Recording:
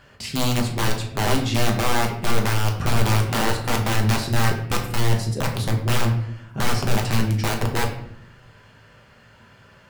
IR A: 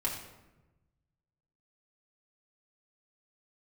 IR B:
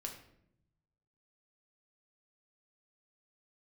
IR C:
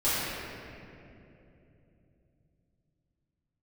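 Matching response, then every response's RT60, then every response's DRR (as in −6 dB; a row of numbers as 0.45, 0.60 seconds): B; 1.1, 0.75, 2.9 seconds; −4.5, 1.0, −14.0 decibels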